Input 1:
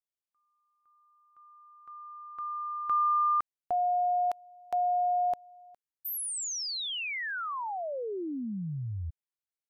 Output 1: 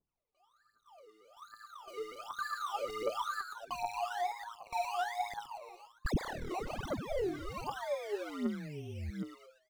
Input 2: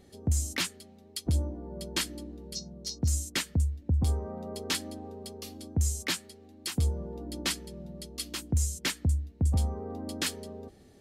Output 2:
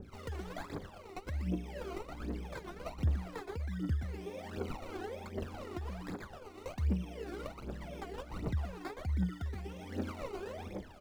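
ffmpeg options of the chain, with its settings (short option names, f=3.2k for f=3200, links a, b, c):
-filter_complex "[0:a]bandreject=f=2.9k:w=15,asplit=6[a][b][c][d][e][f];[b]adelay=118,afreqshift=110,volume=-6dB[g];[c]adelay=236,afreqshift=220,volume=-14dB[h];[d]adelay=354,afreqshift=330,volume=-21.9dB[i];[e]adelay=472,afreqshift=440,volume=-29.9dB[j];[f]adelay=590,afreqshift=550,volume=-37.8dB[k];[a][g][h][i][j][k]amix=inputs=6:normalize=0,acrossover=split=1600[l][m];[m]alimiter=level_in=1.5dB:limit=-24dB:level=0:latency=1:release=434,volume=-1.5dB[n];[l][n]amix=inputs=2:normalize=0,acrusher=samples=21:mix=1:aa=0.000001:lfo=1:lforange=12.6:lforate=1.1,highshelf=f=7k:g=-10.5,acompressor=threshold=-36dB:ratio=6:attack=0.26:release=547:knee=1:detection=rms,aphaser=in_gain=1:out_gain=1:delay=2.9:decay=0.77:speed=1.3:type=triangular,adynamicequalizer=threshold=0.00251:dfrequency=1800:dqfactor=0.7:tfrequency=1800:tqfactor=0.7:attack=5:release=100:ratio=0.375:range=2:mode=cutabove:tftype=highshelf,volume=-1dB"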